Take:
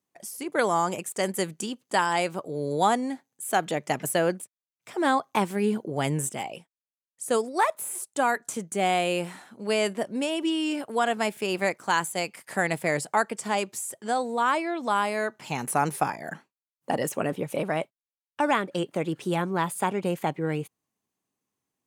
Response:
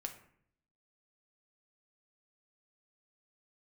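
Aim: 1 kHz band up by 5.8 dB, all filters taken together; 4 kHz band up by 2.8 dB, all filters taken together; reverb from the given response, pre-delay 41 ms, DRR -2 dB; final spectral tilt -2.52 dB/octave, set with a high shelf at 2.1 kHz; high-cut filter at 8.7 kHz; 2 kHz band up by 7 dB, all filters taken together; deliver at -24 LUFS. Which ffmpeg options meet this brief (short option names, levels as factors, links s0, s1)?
-filter_complex "[0:a]lowpass=8700,equalizer=f=1000:t=o:g=6.5,equalizer=f=2000:t=o:g=9,highshelf=f=2100:g=-6.5,equalizer=f=4000:t=o:g=5.5,asplit=2[s0][s1];[1:a]atrim=start_sample=2205,adelay=41[s2];[s1][s2]afir=irnorm=-1:irlink=0,volume=1.58[s3];[s0][s3]amix=inputs=2:normalize=0,volume=0.562"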